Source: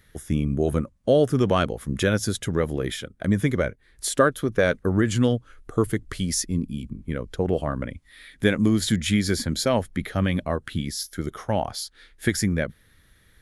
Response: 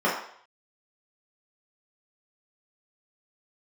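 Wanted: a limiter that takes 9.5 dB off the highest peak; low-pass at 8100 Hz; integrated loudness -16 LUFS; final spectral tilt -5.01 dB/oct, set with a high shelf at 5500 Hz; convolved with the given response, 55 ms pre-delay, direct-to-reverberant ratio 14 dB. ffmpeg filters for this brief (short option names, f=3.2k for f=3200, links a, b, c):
-filter_complex "[0:a]lowpass=8.1k,highshelf=f=5.5k:g=4,alimiter=limit=-14dB:level=0:latency=1,asplit=2[a][b];[1:a]atrim=start_sample=2205,adelay=55[c];[b][c]afir=irnorm=-1:irlink=0,volume=-30dB[d];[a][d]amix=inputs=2:normalize=0,volume=10.5dB"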